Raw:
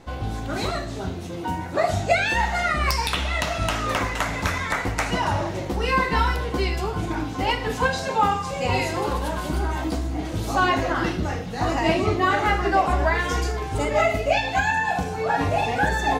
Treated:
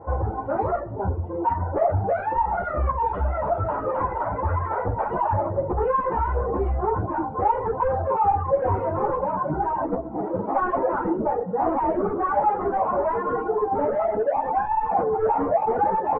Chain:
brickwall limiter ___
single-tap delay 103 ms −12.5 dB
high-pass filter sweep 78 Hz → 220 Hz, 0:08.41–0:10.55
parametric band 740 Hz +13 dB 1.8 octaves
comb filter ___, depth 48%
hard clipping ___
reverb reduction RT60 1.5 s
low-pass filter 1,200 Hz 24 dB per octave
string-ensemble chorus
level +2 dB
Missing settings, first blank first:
−15 dBFS, 2.1 ms, −16.5 dBFS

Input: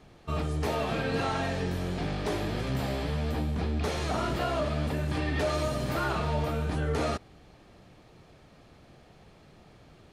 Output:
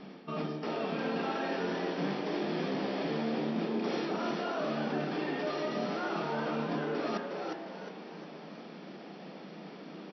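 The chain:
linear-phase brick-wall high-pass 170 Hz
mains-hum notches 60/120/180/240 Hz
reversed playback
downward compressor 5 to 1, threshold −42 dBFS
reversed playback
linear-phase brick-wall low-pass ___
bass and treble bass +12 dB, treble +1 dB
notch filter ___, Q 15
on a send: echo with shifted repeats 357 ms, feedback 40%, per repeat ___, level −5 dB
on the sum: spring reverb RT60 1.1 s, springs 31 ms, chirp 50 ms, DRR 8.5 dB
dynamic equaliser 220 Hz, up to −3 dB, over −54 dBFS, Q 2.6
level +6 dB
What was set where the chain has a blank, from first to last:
5,800 Hz, 4,000 Hz, +110 Hz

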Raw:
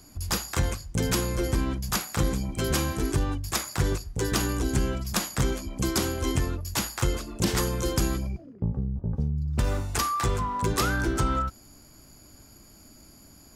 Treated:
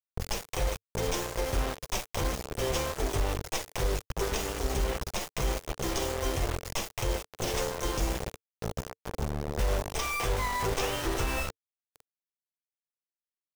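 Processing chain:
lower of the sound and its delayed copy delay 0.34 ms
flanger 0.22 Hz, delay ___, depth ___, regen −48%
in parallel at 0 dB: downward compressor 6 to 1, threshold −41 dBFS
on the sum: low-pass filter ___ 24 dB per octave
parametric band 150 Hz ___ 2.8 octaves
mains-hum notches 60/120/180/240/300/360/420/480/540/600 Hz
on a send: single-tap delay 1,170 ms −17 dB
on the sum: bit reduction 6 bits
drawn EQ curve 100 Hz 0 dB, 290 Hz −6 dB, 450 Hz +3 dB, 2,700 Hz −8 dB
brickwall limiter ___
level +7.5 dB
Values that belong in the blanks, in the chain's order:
4.3 ms, 4.5 ms, 8,100 Hz, −13.5 dB, −26 dBFS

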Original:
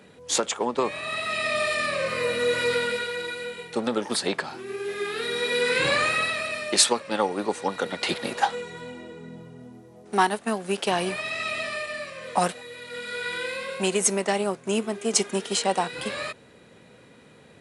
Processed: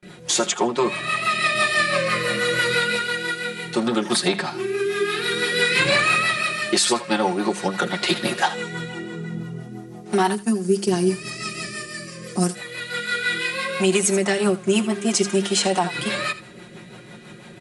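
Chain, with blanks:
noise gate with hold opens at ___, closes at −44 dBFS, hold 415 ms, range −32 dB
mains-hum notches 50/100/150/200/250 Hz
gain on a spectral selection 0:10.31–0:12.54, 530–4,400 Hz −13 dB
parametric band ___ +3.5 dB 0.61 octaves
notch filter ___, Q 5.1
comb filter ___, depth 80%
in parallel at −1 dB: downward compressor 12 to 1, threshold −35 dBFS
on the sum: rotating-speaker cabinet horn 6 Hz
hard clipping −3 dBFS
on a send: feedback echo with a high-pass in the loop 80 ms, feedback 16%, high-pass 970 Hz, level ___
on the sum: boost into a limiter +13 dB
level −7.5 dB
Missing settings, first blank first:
−43 dBFS, 110 Hz, 510 Hz, 5.6 ms, −14.5 dB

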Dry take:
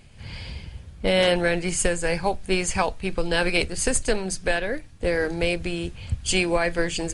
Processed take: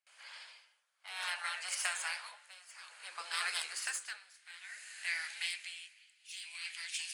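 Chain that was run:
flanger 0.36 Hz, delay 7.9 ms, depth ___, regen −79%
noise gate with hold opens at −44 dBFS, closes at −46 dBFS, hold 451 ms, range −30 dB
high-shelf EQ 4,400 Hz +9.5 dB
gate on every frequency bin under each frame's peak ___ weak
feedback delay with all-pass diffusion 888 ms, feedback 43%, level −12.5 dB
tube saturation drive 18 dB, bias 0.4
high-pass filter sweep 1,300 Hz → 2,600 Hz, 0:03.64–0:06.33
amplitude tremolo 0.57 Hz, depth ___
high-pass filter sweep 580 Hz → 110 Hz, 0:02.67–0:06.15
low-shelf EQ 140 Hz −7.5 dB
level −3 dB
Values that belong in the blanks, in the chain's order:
7.4 ms, −15 dB, 89%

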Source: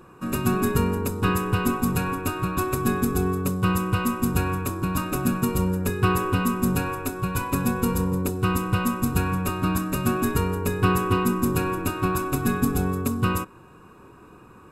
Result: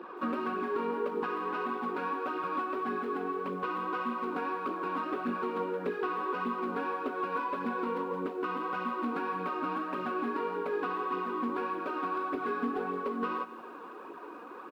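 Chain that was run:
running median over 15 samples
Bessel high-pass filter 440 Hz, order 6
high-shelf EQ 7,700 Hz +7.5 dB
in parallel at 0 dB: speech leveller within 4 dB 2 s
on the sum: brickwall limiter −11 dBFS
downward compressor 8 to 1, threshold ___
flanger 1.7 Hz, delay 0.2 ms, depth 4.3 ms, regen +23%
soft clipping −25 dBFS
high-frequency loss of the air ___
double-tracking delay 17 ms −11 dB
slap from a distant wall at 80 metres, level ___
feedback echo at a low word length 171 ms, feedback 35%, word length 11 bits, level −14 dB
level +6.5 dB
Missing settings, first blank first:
−32 dBFS, 420 metres, −27 dB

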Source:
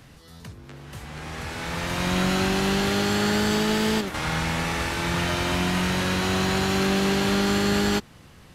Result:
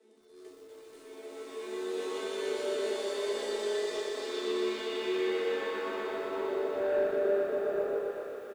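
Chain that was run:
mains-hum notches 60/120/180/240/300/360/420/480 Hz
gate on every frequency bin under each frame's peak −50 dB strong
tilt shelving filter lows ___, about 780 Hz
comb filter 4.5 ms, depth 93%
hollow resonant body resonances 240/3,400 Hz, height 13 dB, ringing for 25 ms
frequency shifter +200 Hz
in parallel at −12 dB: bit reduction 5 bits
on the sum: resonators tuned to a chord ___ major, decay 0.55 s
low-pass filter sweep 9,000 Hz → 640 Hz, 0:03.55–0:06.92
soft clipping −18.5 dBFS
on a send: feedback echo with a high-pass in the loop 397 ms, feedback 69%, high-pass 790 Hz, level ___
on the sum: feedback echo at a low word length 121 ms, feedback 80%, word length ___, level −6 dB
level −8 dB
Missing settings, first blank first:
+3.5 dB, D2, −5 dB, 9 bits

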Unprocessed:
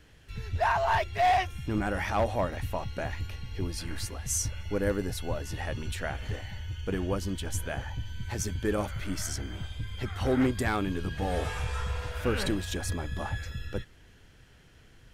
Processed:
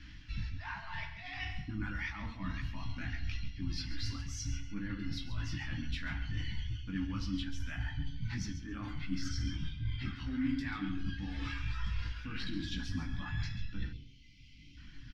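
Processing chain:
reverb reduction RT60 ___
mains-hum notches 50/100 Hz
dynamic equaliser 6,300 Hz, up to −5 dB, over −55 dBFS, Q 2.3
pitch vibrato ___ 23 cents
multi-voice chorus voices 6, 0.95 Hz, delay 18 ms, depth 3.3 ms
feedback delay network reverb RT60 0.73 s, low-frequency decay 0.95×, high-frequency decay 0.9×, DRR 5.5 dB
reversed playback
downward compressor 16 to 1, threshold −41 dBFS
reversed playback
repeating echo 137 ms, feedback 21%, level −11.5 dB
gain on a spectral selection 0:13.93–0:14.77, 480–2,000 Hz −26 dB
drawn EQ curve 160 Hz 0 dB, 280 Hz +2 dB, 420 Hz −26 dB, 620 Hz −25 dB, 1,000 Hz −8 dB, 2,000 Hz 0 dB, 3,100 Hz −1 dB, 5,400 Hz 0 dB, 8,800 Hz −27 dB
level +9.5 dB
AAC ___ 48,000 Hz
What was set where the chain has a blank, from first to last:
1.7 s, 14 Hz, 192 kbit/s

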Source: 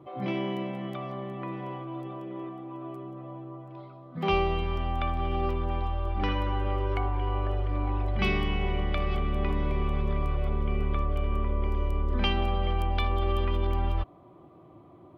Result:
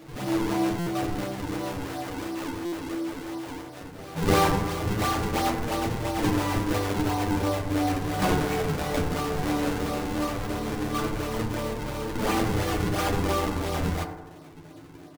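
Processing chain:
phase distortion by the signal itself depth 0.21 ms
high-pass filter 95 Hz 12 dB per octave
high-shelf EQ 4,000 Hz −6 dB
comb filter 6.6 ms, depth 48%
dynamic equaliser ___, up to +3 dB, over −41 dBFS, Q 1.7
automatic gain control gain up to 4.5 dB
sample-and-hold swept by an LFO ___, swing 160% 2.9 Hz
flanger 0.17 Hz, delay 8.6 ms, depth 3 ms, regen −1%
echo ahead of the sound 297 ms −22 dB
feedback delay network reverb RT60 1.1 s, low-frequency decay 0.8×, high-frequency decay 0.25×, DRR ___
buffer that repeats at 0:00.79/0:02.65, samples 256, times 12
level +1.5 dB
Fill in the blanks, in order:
830 Hz, 42×, 3 dB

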